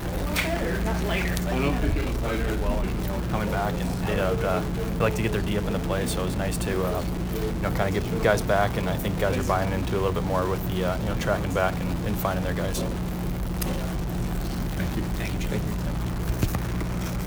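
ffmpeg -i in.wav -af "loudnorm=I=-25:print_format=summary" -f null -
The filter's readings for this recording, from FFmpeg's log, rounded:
Input Integrated:    -26.9 LUFS
Input True Peak:      -7.3 dBTP
Input LRA:             3.4 LU
Input Threshold:     -36.9 LUFS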